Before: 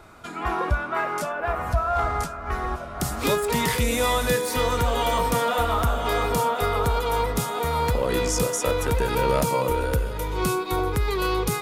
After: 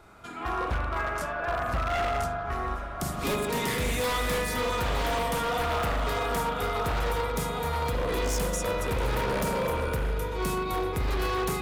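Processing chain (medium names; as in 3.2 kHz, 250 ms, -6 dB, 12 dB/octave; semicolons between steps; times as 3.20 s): spring tank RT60 2 s, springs 40 ms, chirp 50 ms, DRR 0 dB; wavefolder -16 dBFS; trim -6 dB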